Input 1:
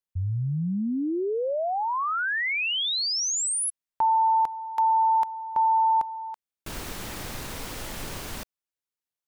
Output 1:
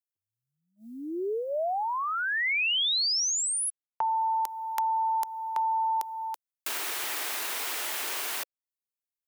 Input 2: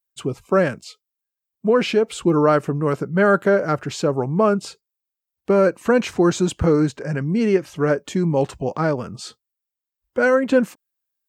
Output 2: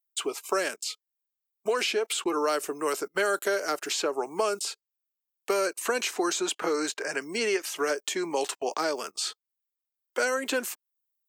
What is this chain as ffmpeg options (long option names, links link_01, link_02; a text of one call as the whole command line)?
ffmpeg -i in.wav -filter_complex "[0:a]crystalizer=i=7:c=0,highpass=frequency=390:width=0.5412,highpass=frequency=390:width=1.3066,equalizer=frequency=520:width_type=o:width=0.25:gain=-8.5,acrossover=split=550|3000[link_01][link_02][link_03];[link_01]acompressor=threshold=-28dB:ratio=4[link_04];[link_02]acompressor=threshold=-32dB:ratio=4[link_05];[link_03]acompressor=threshold=-35dB:ratio=4[link_06];[link_04][link_05][link_06]amix=inputs=3:normalize=0,agate=range=-24dB:threshold=-49dB:ratio=16:release=39:detection=peak" out.wav